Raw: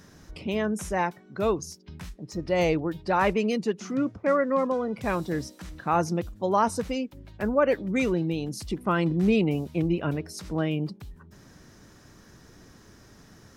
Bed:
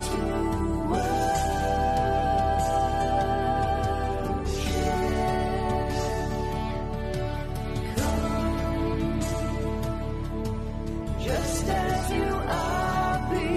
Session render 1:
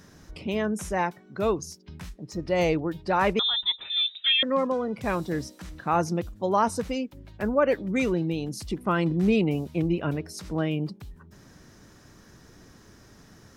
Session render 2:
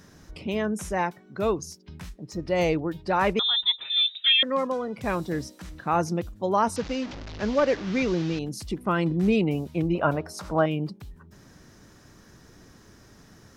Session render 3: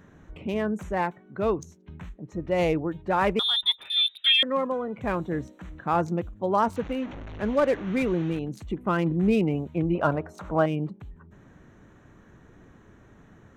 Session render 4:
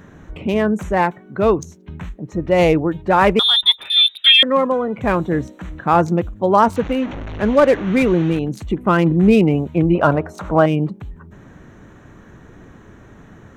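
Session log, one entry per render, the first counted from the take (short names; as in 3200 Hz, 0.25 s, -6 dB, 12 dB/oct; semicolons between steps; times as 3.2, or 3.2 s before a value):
3.39–4.43 inverted band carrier 3800 Hz
3.49–4.96 tilt +1.5 dB/oct; 6.76–8.39 delta modulation 32 kbps, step -32 dBFS; 9.95–10.66 band shelf 900 Hz +11 dB
Wiener smoothing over 9 samples; notch 5400 Hz, Q 29
gain +10 dB; limiter -1 dBFS, peak gain reduction 2 dB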